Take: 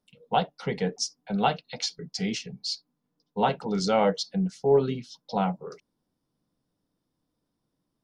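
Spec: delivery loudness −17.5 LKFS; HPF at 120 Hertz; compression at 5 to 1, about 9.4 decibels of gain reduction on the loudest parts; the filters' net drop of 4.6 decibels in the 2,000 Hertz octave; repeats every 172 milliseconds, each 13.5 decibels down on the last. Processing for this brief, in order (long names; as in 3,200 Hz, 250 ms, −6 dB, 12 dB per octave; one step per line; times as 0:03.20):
high-pass filter 120 Hz
parametric band 2,000 Hz −6.5 dB
downward compressor 5 to 1, threshold −27 dBFS
repeating echo 172 ms, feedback 21%, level −13.5 dB
level +16 dB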